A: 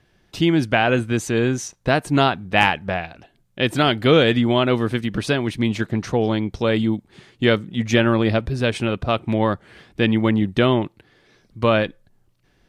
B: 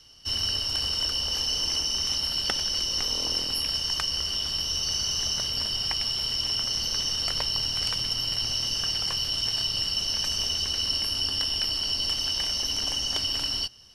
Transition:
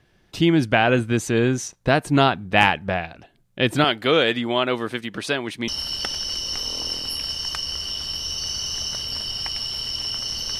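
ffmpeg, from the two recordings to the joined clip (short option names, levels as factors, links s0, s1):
-filter_complex "[0:a]asettb=1/sr,asplit=3[s0][s1][s2];[s0]atrim=end=3.844[s3];[s1]atrim=start=3.84:end=5.68,asetpts=PTS-STARTPTS,afade=t=in:d=0.004:c=qsin,afade=t=out:st=1.836:d=0.004:c=qsin,highpass=f=540:p=1[s4];[s2]atrim=start=5.676[s5];[s3][s4]acrossfade=d=0.004:c1=hsin:c2=qsin[s6];[s6][s5]acrossfade=d=0.004:c1=qsin:c2=hsin,apad=whole_dur=10.59,atrim=end=10.59,atrim=end=5.682[s7];[1:a]atrim=start=2.128:end=7.04[s8];[s7][s8]acrossfade=d=0.004:c1=hsin:c2=hsin"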